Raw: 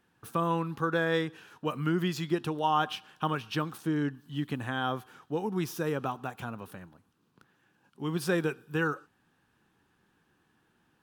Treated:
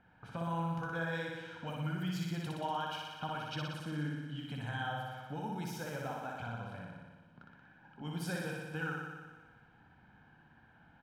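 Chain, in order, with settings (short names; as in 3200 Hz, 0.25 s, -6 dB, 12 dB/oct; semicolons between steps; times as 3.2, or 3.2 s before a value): low-pass opened by the level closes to 2100 Hz, open at -28 dBFS; comb 1.3 ms, depth 66%; compressor 2:1, threshold -55 dBFS, peak gain reduction 18.5 dB; flange 1.4 Hz, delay 0.1 ms, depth 7.3 ms, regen -56%; flutter echo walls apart 10.3 m, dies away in 1.4 s; gain +7.5 dB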